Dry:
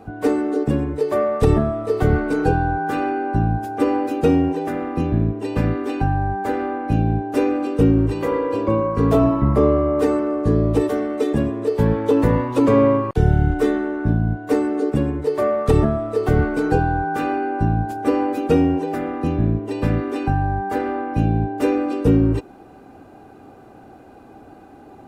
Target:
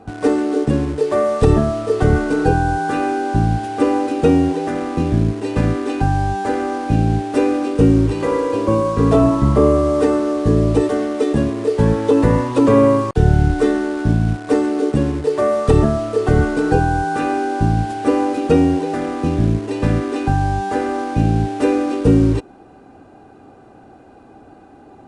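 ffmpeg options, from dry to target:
ffmpeg -i in.wav -filter_complex "[0:a]bandreject=frequency=2200:width=21,asplit=2[link_01][link_02];[link_02]acrusher=bits=4:mix=0:aa=0.000001,volume=-8.5dB[link_03];[link_01][link_03]amix=inputs=2:normalize=0,aresample=22050,aresample=44100" out.wav

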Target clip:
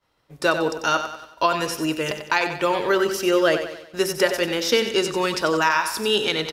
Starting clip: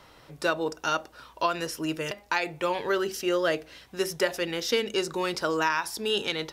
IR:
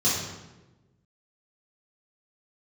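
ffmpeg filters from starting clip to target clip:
-af "agate=range=-33dB:threshold=-40dB:ratio=3:detection=peak,aecho=1:1:93|186|279|372|465:0.355|0.163|0.0751|0.0345|0.0159,volume=6dB"

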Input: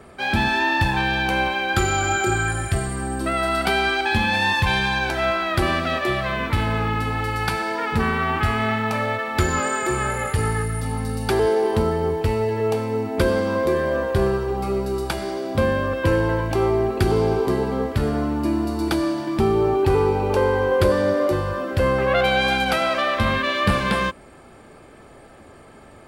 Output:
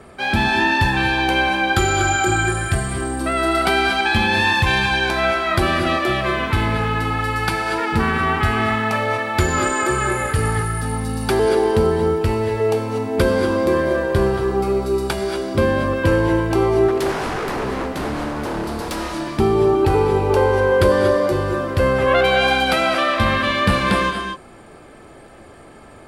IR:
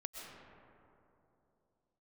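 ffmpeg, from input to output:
-filter_complex "[0:a]asettb=1/sr,asplit=3[link_01][link_02][link_03];[link_01]atrim=end=16.884[link_04];[link_02]atrim=start=16.88:end=19.21,asetpts=PTS-STARTPTS,afade=type=in:duration=0.004:curve=qsin,afade=type=out:start_time=2.326:duration=0.004:curve=qsin,aeval=exprs='0.0794*(abs(mod(val(0)/0.0794+3,4)-2)-1)':channel_layout=same[link_05];[link_03]atrim=start=19.206[link_06];[link_04][link_05]acrossfade=duration=0.004:curve1=hsin:curve2=qsin[link_07];[link_07][link_06]acrossfade=duration=0.004:curve1=qsin:curve2=hsin[link_08];[1:a]atrim=start_sample=2205,atrim=end_sample=6174,asetrate=23814,aresample=44100[link_09];[link_08][link_09]afir=irnorm=-1:irlink=0,volume=4dB"

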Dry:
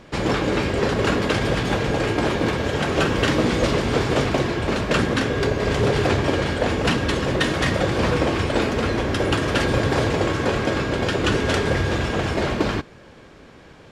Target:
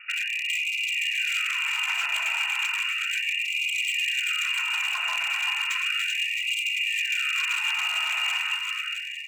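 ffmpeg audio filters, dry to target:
ffmpeg -i in.wav -filter_complex "[0:a]alimiter=limit=-12.5dB:level=0:latency=1:release=295,bandreject=frequency=60:width_type=h:width=6,bandreject=frequency=120:width_type=h:width=6,bandreject=frequency=180:width_type=h:width=6,bandreject=frequency=240:width_type=h:width=6,bandreject=frequency=300:width_type=h:width=6,atempo=1.5,aeval=exprs='0.316*(cos(1*acos(clip(val(0)/0.316,-1,1)))-cos(1*PI/2))+0.0316*(cos(3*acos(clip(val(0)/0.316,-1,1)))-cos(3*PI/2))+0.00794*(cos(4*acos(clip(val(0)/0.316,-1,1)))-cos(4*PI/2))+0.00708*(cos(5*acos(clip(val(0)/0.316,-1,1)))-cos(5*PI/2))+0.00251*(cos(7*acos(clip(val(0)/0.316,-1,1)))-cos(7*PI/2))':channel_layout=same,lowpass=frequency=2500:width_type=q:width=0.5098,lowpass=frequency=2500:width_type=q:width=0.6013,lowpass=frequency=2500:width_type=q:width=0.9,lowpass=frequency=2500:width_type=q:width=2.563,afreqshift=-2900,aecho=1:1:2.1:0.56,aeval=exprs='0.112*(abs(mod(val(0)/0.112+3,4)-2)-1)':channel_layout=same,acompressor=threshold=-32dB:ratio=2.5,asplit=2[link_01][link_02];[link_02]aecho=0:1:390|663|854.1|987.9|1082:0.631|0.398|0.251|0.158|0.1[link_03];[link_01][link_03]amix=inputs=2:normalize=0,afftfilt=real='re*gte(b*sr/1024,620*pow(2000/620,0.5+0.5*sin(2*PI*0.34*pts/sr)))':imag='im*gte(b*sr/1024,620*pow(2000/620,0.5+0.5*sin(2*PI*0.34*pts/sr)))':win_size=1024:overlap=0.75,volume=3dB" out.wav

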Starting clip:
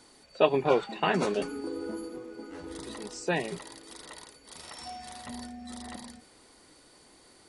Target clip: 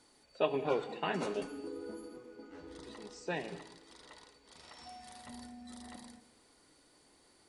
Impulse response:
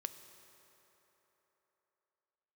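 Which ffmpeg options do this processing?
-filter_complex "[0:a]asettb=1/sr,asplit=3[link_01][link_02][link_03];[link_01]atrim=end=2.344[link_04];[link_02]atrim=start=2.34:end=4.89,asetpts=PTS-STARTPTS,afade=type=in:duration=0.004:curve=qsin,afade=type=out:start_time=2.546:duration=0.004:curve=qsin,lowpass=6600[link_05];[link_03]atrim=start=4.886[link_06];[link_04][link_05]acrossfade=duration=0.004:curve1=hsin:curve2=qsin[link_07];[link_07][link_06]acrossfade=duration=0.004:curve1=qsin:curve2=hsin[link_08];[1:a]atrim=start_sample=2205,afade=type=out:start_time=0.25:duration=0.01,atrim=end_sample=11466,asetrate=34398,aresample=44100[link_09];[link_08][link_09]afir=irnorm=-1:irlink=0,volume=-7dB"

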